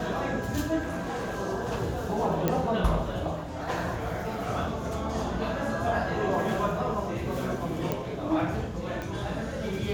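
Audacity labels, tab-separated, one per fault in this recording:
0.810000	1.390000	clipping −29 dBFS
2.480000	2.480000	click −11 dBFS
7.920000	7.920000	click −15 dBFS
9.020000	9.020000	click −21 dBFS

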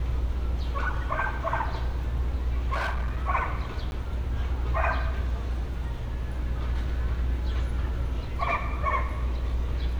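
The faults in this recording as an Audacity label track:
2.720000	3.290000	clipping −24.5 dBFS
3.910000	3.920000	drop-out

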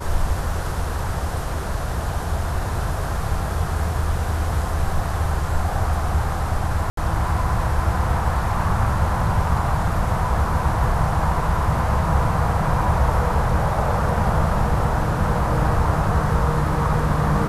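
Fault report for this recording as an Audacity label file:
6.900000	6.970000	drop-out 73 ms

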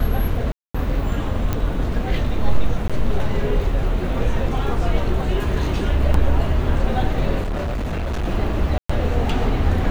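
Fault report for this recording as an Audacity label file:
0.520000	0.740000	drop-out 225 ms
1.530000	1.530000	click −9 dBFS
2.880000	2.900000	drop-out 16 ms
6.140000	6.140000	drop-out 3.1 ms
7.430000	8.250000	clipping −20.5 dBFS
8.780000	8.890000	drop-out 115 ms

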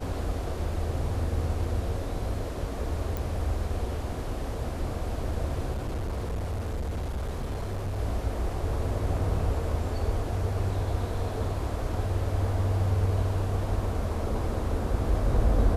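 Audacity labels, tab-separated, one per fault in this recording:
3.170000	3.170000	click
5.730000	7.990000	clipping −27.5 dBFS

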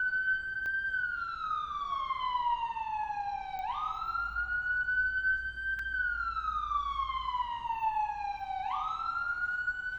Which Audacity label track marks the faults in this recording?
0.660000	0.660000	click −28 dBFS
3.590000	3.590000	click −28 dBFS
5.790000	5.790000	drop-out 3.5 ms

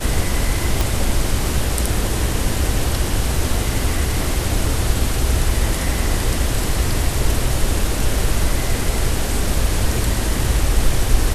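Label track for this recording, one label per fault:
0.810000	0.810000	click

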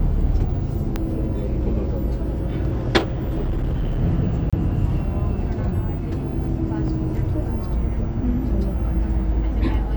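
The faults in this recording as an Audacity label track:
0.960000	0.960000	click −10 dBFS
2.980000	4.020000	clipping −19 dBFS
4.500000	4.530000	drop-out 26 ms

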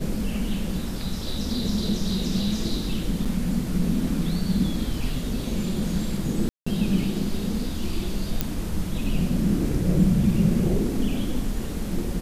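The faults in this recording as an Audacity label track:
3.250000	3.260000	drop-out 6 ms
6.490000	6.670000	drop-out 175 ms
8.410000	8.410000	click −8 dBFS

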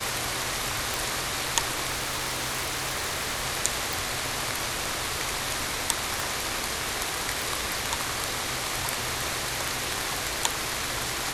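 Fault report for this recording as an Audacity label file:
0.940000	0.940000	click
1.900000	3.440000	clipping −24.5 dBFS
3.930000	3.930000	click
6.200000	6.200000	click
7.420000	7.420000	click

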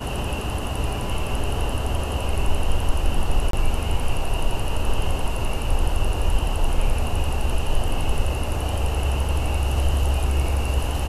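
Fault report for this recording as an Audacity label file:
3.510000	3.530000	drop-out 23 ms

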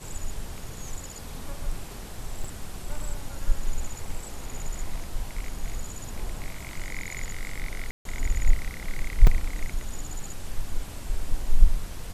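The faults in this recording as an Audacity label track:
2.440000	2.440000	drop-out 4.2 ms
7.910000	8.050000	drop-out 142 ms
9.270000	9.270000	drop-out 3.6 ms

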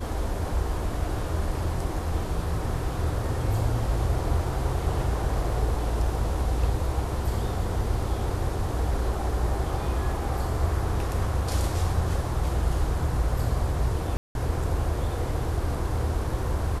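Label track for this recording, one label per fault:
14.170000	14.350000	drop-out 181 ms

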